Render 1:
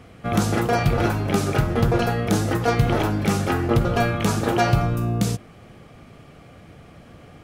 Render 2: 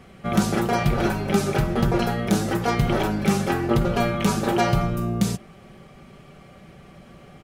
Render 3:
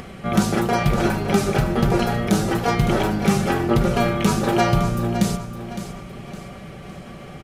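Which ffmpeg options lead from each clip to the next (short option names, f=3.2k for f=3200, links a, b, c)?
-af "aecho=1:1:5.2:0.54,volume=-1.5dB"
-af "acompressor=mode=upward:threshold=-31dB:ratio=2.5,aresample=32000,aresample=44100,aecho=1:1:561|1122|1683|2244:0.282|0.11|0.0429|0.0167,volume=2dB"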